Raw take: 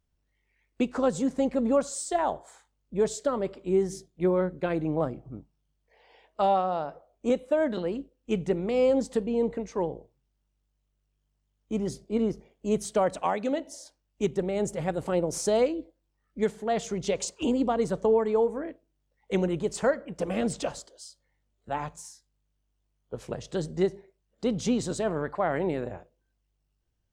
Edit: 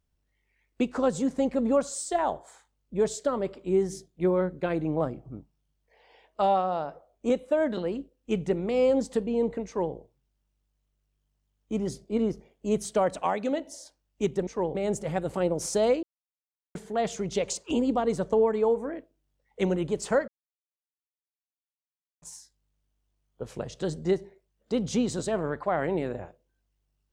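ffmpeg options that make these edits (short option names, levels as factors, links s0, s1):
-filter_complex "[0:a]asplit=7[s0][s1][s2][s3][s4][s5][s6];[s0]atrim=end=14.472[s7];[s1]atrim=start=9.658:end=9.942[s8];[s2]atrim=start=14.468:end=15.75,asetpts=PTS-STARTPTS,afade=t=out:st=1.278:d=0.004:c=hsin[s9];[s3]atrim=start=15.75:end=16.47,asetpts=PTS-STARTPTS,volume=0[s10];[s4]atrim=start=16.47:end=20,asetpts=PTS-STARTPTS,afade=t=in:d=0.004:c=hsin,afade=t=out:st=3.526:d=0.004:c=hsin[s11];[s5]atrim=start=20:end=21.94,asetpts=PTS-STARTPTS,volume=0[s12];[s6]atrim=start=21.94,asetpts=PTS-STARTPTS,afade=t=in:d=0.004:c=hsin[s13];[s7][s8]acrossfade=d=0.004:c1=hsin:c2=hsin[s14];[s9][s10][s11][s12][s13]concat=n=5:v=0:a=1[s15];[s14][s15]acrossfade=d=0.004:c1=hsin:c2=hsin"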